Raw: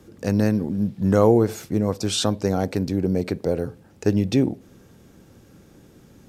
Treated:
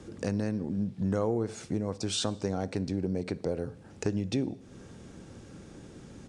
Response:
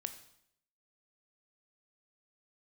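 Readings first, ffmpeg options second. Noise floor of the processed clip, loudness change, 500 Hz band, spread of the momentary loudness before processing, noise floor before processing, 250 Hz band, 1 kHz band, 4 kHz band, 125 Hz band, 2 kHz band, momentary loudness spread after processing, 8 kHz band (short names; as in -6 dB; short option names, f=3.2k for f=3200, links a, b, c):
-51 dBFS, -10.0 dB, -11.0 dB, 8 LU, -52 dBFS, -10.0 dB, -11.0 dB, -7.0 dB, -9.5 dB, -8.5 dB, 18 LU, -7.0 dB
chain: -filter_complex "[0:a]acompressor=threshold=-35dB:ratio=2.5,asplit=2[a][b];[1:a]atrim=start_sample=2205,asetrate=34398,aresample=44100[c];[b][c]afir=irnorm=-1:irlink=0,volume=-9.5dB[d];[a][d]amix=inputs=2:normalize=0,aresample=22050,aresample=44100"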